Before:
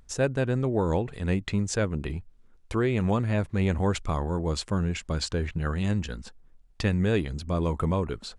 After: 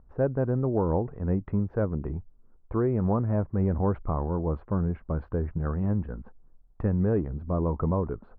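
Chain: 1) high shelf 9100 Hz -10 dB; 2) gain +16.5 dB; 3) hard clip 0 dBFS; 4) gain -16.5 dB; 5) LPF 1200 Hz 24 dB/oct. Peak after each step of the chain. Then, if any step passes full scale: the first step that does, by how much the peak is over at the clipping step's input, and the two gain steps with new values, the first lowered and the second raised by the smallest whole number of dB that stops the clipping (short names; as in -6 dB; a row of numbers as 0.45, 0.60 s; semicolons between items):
-12.5, +4.0, 0.0, -16.5, -16.0 dBFS; step 2, 4.0 dB; step 2 +12.5 dB, step 4 -12.5 dB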